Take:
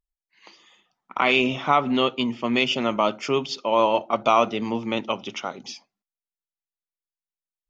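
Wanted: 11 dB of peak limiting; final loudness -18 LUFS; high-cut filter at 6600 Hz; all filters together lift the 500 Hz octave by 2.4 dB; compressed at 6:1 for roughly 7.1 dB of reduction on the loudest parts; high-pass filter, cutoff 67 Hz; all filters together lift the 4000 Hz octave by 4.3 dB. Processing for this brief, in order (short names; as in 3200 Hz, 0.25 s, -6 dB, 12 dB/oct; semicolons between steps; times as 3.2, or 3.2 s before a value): HPF 67 Hz; LPF 6600 Hz; bell 500 Hz +3 dB; bell 4000 Hz +6.5 dB; compressor 6:1, threshold -19 dBFS; gain +11 dB; limiter -6.5 dBFS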